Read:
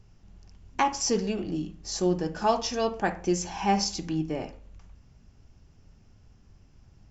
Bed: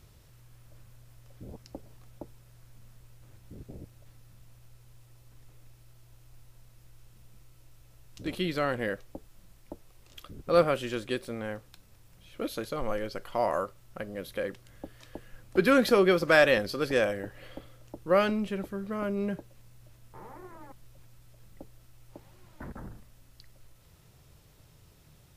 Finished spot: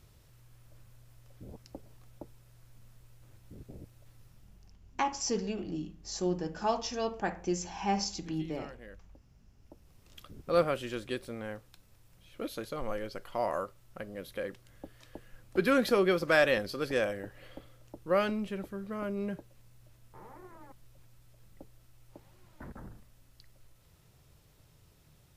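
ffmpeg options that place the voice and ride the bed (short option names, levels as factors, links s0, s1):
-filter_complex "[0:a]adelay=4200,volume=0.501[s0];[1:a]volume=3.98,afade=t=out:st=4.23:d=0.54:silence=0.158489,afade=t=in:st=9.59:d=0.48:silence=0.177828[s1];[s0][s1]amix=inputs=2:normalize=0"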